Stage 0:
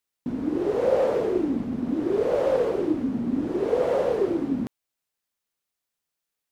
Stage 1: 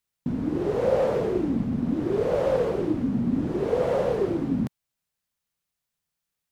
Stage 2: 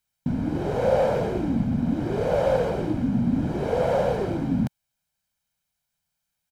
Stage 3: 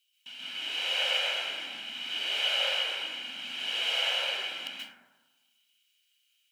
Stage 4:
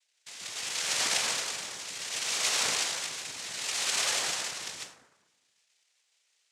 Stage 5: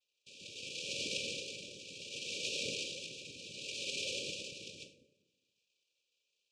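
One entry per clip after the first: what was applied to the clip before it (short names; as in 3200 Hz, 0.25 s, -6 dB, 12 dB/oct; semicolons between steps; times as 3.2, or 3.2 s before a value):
resonant low shelf 220 Hz +6.5 dB, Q 1.5
comb 1.3 ms, depth 52%; gain +2 dB
resonant high-pass 2900 Hz, resonance Q 13; plate-style reverb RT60 1.2 s, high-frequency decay 0.25×, pre-delay 0.12 s, DRR -7.5 dB
noise vocoder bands 3
brick-wall FIR band-stop 600–2300 Hz; tape spacing loss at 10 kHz 22 dB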